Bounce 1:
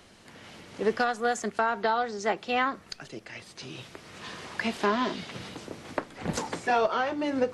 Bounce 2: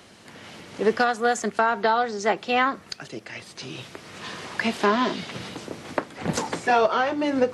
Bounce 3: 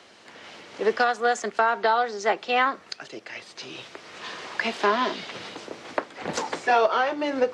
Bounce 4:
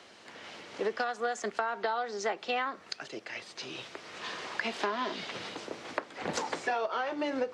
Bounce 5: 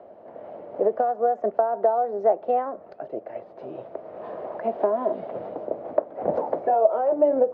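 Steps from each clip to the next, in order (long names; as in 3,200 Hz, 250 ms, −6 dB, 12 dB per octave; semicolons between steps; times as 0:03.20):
high-pass filter 81 Hz; level +5 dB
three-way crossover with the lows and the highs turned down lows −13 dB, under 310 Hz, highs −19 dB, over 7,700 Hz
downward compressor 6 to 1, threshold −26 dBFS, peak gain reduction 10.5 dB; level −2.5 dB
low-pass with resonance 630 Hz, resonance Q 4.9; level +4 dB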